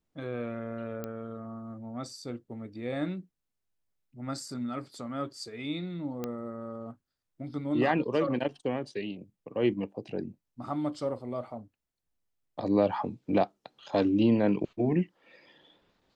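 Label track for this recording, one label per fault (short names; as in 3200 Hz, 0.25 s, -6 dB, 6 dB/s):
1.040000	1.040000	pop -22 dBFS
6.240000	6.240000	pop -20 dBFS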